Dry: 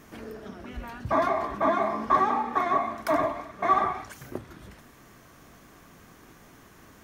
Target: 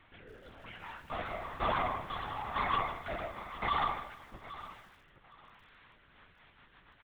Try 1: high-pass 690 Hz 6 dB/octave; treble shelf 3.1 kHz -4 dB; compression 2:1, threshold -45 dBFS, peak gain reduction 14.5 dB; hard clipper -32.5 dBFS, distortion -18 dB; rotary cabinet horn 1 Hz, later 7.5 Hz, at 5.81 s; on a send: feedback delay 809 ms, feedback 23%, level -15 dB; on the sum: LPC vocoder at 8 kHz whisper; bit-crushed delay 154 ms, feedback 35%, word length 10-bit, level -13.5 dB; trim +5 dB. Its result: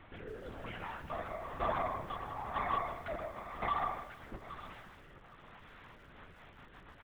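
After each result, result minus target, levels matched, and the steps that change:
compression: peak gain reduction +14.5 dB; 500 Hz band +3.5 dB
remove: compression 2:1, threshold -45 dBFS, peak gain reduction 14.5 dB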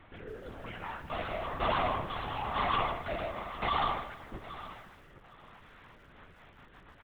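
500 Hz band +2.5 dB
change: high-pass 2.4 kHz 6 dB/octave

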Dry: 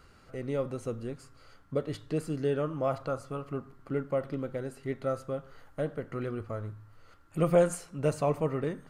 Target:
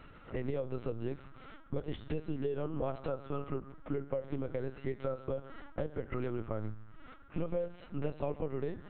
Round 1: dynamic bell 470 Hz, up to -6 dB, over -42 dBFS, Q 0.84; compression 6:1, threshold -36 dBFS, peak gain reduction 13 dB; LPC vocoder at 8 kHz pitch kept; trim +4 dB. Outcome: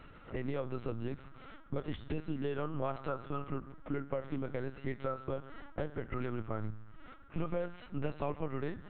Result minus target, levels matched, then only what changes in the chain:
1 kHz band +4.0 dB
change: dynamic bell 1.3 kHz, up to -6 dB, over -42 dBFS, Q 0.84

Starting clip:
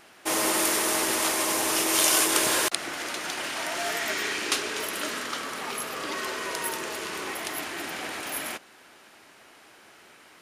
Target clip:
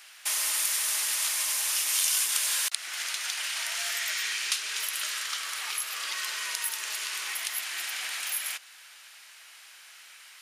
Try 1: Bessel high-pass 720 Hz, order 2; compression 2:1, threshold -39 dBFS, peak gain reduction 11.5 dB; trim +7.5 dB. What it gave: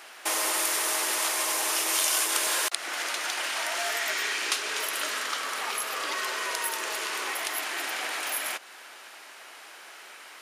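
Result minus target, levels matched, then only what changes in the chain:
1 kHz band +9.0 dB
change: Bessel high-pass 2.6 kHz, order 2

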